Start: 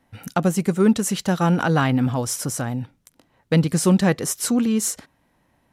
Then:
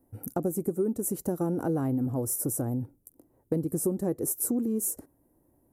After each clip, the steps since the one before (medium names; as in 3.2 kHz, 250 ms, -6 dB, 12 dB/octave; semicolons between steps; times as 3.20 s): FFT filter 110 Hz 0 dB, 190 Hz -6 dB, 330 Hz +7 dB, 3.4 kHz -30 dB, 12 kHz +8 dB; compression 6:1, threshold -23 dBFS, peak gain reduction 11.5 dB; trim -2 dB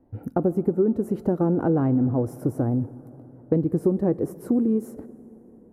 distance through air 370 m; plate-style reverb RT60 4.7 s, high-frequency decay 0.55×, DRR 17 dB; trim +7.5 dB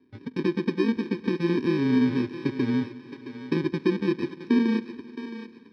bit-reversed sample order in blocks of 64 samples; cabinet simulation 140–3700 Hz, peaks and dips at 250 Hz +8 dB, 360 Hz +8 dB, 550 Hz -8 dB, 830 Hz -8 dB, 1.2 kHz -7 dB, 2.8 kHz -4 dB; thinning echo 668 ms, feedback 28%, high-pass 390 Hz, level -9.5 dB; trim -3.5 dB